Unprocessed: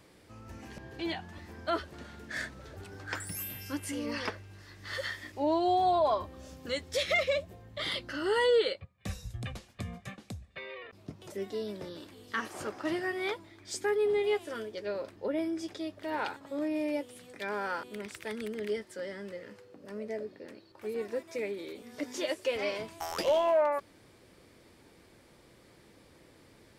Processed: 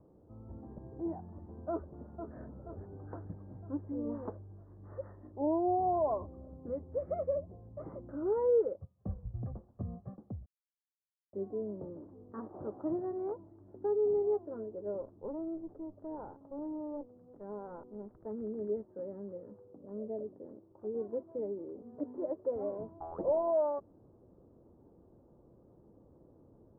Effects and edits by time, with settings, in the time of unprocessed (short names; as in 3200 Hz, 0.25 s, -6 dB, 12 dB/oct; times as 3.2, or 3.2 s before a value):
1.7–2.37 echo throw 0.48 s, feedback 55%, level -7.5 dB
10.46–11.33 mute
15.01–18.26 tube stage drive 33 dB, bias 0.65
whole clip: Bessel low-pass 590 Hz, order 8